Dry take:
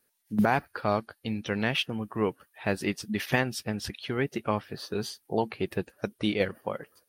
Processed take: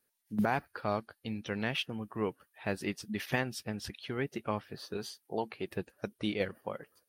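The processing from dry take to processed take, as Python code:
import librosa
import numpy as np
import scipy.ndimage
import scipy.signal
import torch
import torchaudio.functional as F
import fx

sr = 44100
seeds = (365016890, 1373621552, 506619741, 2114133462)

y = fx.low_shelf(x, sr, hz=160.0, db=-9.0, at=(4.97, 5.68))
y = F.gain(torch.from_numpy(y), -6.0).numpy()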